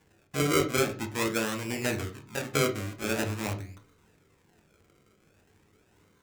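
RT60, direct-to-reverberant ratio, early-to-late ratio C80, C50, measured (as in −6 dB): 0.40 s, 5.5 dB, 19.5 dB, 14.0 dB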